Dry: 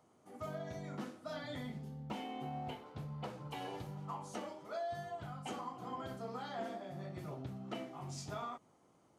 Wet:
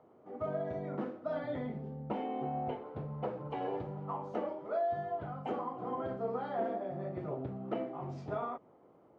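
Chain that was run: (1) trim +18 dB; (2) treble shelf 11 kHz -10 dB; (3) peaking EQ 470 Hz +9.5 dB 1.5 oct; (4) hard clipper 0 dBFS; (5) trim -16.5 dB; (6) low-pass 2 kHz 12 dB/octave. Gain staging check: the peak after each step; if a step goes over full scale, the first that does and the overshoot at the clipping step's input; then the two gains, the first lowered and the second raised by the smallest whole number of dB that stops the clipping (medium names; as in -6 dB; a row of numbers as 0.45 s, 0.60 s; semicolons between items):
-9.5 dBFS, -10.0 dBFS, -6.0 dBFS, -6.0 dBFS, -22.5 dBFS, -22.5 dBFS; nothing clips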